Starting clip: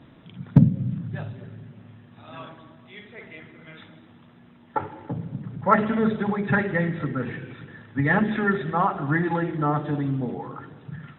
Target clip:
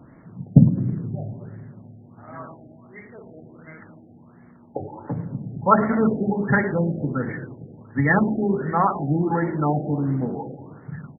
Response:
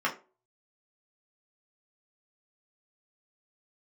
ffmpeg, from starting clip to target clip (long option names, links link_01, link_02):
-filter_complex "[0:a]asplit=2[link_01][link_02];[link_02]asplit=4[link_03][link_04][link_05][link_06];[link_03]adelay=106,afreqshift=55,volume=-17dB[link_07];[link_04]adelay=212,afreqshift=110,volume=-23.4dB[link_08];[link_05]adelay=318,afreqshift=165,volume=-29.8dB[link_09];[link_06]adelay=424,afreqshift=220,volume=-36.1dB[link_10];[link_07][link_08][link_09][link_10]amix=inputs=4:normalize=0[link_11];[link_01][link_11]amix=inputs=2:normalize=0,afftfilt=real='re*lt(b*sr/1024,790*pow(2300/790,0.5+0.5*sin(2*PI*1.4*pts/sr)))':imag='im*lt(b*sr/1024,790*pow(2300/790,0.5+0.5*sin(2*PI*1.4*pts/sr)))':win_size=1024:overlap=0.75,volume=2.5dB"